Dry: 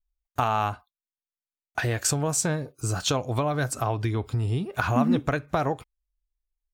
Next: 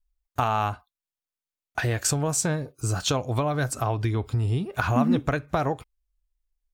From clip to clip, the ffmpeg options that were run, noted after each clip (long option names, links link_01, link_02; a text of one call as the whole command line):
ffmpeg -i in.wav -af "lowshelf=frequency=61:gain=7" out.wav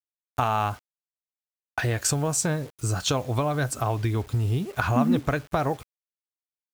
ffmpeg -i in.wav -af "acrusher=bits=7:mix=0:aa=0.000001" out.wav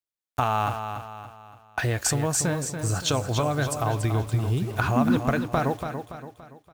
ffmpeg -i in.wav -af "aecho=1:1:285|570|855|1140|1425:0.398|0.171|0.0736|0.0317|0.0136" out.wav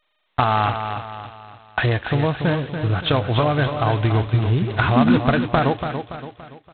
ffmpeg -i in.wav -af "volume=6dB" -ar 8000 -c:a adpcm_g726 -b:a 16k out.wav